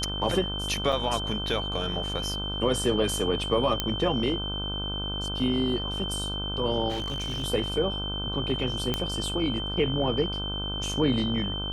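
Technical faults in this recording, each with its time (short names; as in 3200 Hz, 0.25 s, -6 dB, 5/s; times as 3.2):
buzz 50 Hz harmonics 31 -34 dBFS
tone 3100 Hz -32 dBFS
0.92–0.93 gap 5.5 ms
3.8 pop -9 dBFS
6.89–7.44 clipped -27 dBFS
8.94 pop -11 dBFS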